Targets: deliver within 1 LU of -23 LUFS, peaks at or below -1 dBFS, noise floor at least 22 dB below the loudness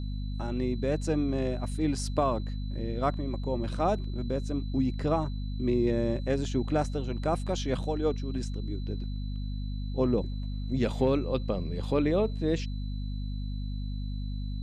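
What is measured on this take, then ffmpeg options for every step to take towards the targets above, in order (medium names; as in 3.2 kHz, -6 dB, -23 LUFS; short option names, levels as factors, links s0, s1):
hum 50 Hz; highest harmonic 250 Hz; hum level -31 dBFS; steady tone 4 kHz; tone level -53 dBFS; loudness -31.0 LUFS; peak level -12.5 dBFS; loudness target -23.0 LUFS
-> -af "bandreject=f=50:t=h:w=4,bandreject=f=100:t=h:w=4,bandreject=f=150:t=h:w=4,bandreject=f=200:t=h:w=4,bandreject=f=250:t=h:w=4"
-af "bandreject=f=4000:w=30"
-af "volume=2.51"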